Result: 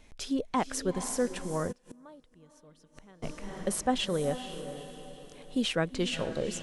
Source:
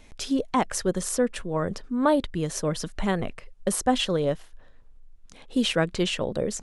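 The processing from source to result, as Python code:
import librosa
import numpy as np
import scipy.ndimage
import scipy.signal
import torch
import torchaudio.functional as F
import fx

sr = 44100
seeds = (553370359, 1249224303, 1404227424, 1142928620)

y = fx.echo_diffused(x, sr, ms=460, feedback_pct=44, wet_db=-10.5)
y = fx.gate_flip(y, sr, shuts_db=-25.0, range_db=-25, at=(1.71, 3.22), fade=0.02)
y = y * librosa.db_to_amplitude(-5.5)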